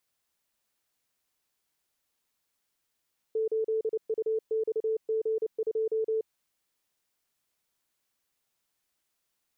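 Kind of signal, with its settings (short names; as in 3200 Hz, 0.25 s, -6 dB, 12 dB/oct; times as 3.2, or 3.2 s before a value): Morse "8UXG2" 29 wpm 441 Hz -25 dBFS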